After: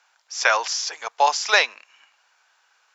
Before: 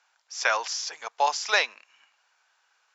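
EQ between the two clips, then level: high-pass 210 Hz 12 dB/octave; +5.5 dB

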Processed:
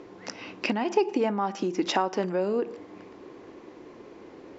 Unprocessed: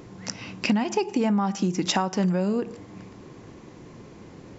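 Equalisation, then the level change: distance through air 130 m; resonant low shelf 230 Hz -12 dB, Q 1.5; 0.0 dB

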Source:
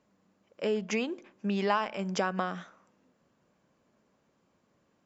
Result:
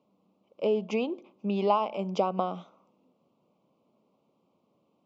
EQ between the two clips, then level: band-pass 150–3100 Hz; dynamic bell 670 Hz, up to +4 dB, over -39 dBFS, Q 0.96; Butterworth band-stop 1.7 kHz, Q 1.2; +1.5 dB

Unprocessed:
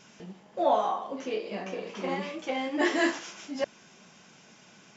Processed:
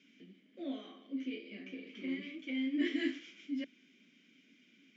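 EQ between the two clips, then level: vowel filter i; high-pass 170 Hz; +3.0 dB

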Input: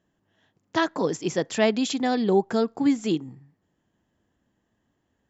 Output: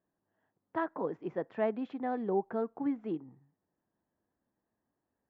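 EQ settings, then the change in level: four-pole ladder low-pass 1.8 kHz, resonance 20%; bass shelf 220 Hz -9 dB; peaking EQ 1.3 kHz -2.5 dB 0.69 oct; -3.0 dB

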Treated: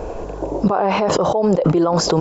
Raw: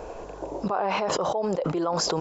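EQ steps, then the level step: bass shelf 480 Hz +9.5 dB; +5.0 dB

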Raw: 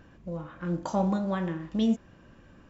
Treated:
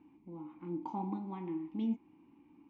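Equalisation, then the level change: vowel filter u; distance through air 77 m; +4.0 dB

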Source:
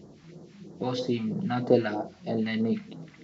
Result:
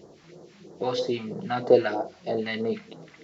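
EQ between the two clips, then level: resonant low shelf 320 Hz -7 dB, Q 1.5; +3.0 dB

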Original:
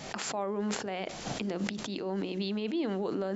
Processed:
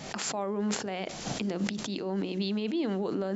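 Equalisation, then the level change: peaking EQ 180 Hz +3 dB 1.6 oct; dynamic bell 6.5 kHz, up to +4 dB, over -49 dBFS, Q 0.73; 0.0 dB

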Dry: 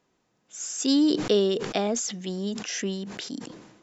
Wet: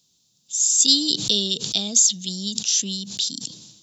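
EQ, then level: high-pass 58 Hz; dynamic bell 5.4 kHz, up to -5 dB, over -45 dBFS, Q 2.7; FFT filter 160 Hz 0 dB, 380 Hz -14 dB, 2 kHz -18 dB, 3.7 kHz +14 dB; +3.0 dB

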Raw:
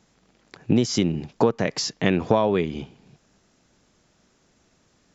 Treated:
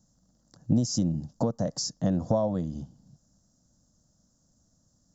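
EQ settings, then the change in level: dynamic bell 630 Hz, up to +6 dB, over -35 dBFS, Q 1.4; high-order bell 1.7 kHz -15 dB 2.7 oct; static phaser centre 980 Hz, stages 4; 0.0 dB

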